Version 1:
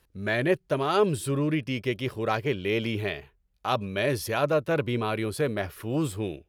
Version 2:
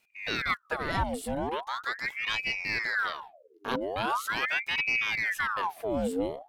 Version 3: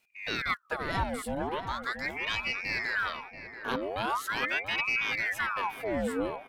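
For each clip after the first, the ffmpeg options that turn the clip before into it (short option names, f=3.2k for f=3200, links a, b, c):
-af "asubboost=boost=11:cutoff=91,aeval=exprs='val(0)*sin(2*PI*1400*n/s+1400*0.75/0.41*sin(2*PI*0.41*n/s))':c=same,volume=-2.5dB"
-filter_complex "[0:a]asplit=2[a][b];[b]adelay=683,lowpass=f=1.7k:p=1,volume=-9dB,asplit=2[c][d];[d]adelay=683,lowpass=f=1.7k:p=1,volume=0.51,asplit=2[e][f];[f]adelay=683,lowpass=f=1.7k:p=1,volume=0.51,asplit=2[g][h];[h]adelay=683,lowpass=f=1.7k:p=1,volume=0.51,asplit=2[i][j];[j]adelay=683,lowpass=f=1.7k:p=1,volume=0.51,asplit=2[k][l];[l]adelay=683,lowpass=f=1.7k:p=1,volume=0.51[m];[a][c][e][g][i][k][m]amix=inputs=7:normalize=0,volume=-1.5dB"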